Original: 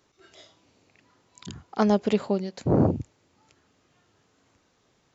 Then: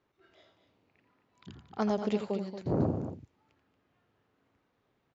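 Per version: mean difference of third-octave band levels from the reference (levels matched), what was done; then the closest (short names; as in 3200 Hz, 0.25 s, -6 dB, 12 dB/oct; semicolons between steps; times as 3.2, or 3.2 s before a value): 3.5 dB: low-pass opened by the level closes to 2700 Hz, open at -17 dBFS; on a send: loudspeakers at several distances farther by 29 m -9 dB, 79 m -10 dB; on the sum: gain -8.5 dB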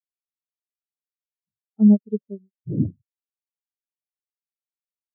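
14.0 dB: bell 3500 Hz +9 dB 0.77 oct; spectral expander 4:1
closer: first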